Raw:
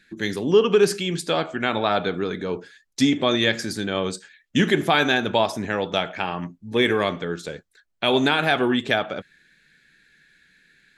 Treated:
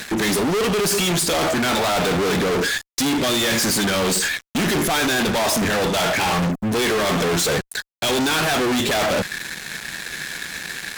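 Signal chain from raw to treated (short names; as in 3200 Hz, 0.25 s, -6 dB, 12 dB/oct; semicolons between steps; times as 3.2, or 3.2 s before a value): HPF 50 Hz 6 dB/oct; high shelf 6100 Hz +11.5 dB; reverse; compressor 8:1, threshold -28 dBFS, peak gain reduction 16.5 dB; reverse; fuzz box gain 51 dB, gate -58 dBFS; gain -5.5 dB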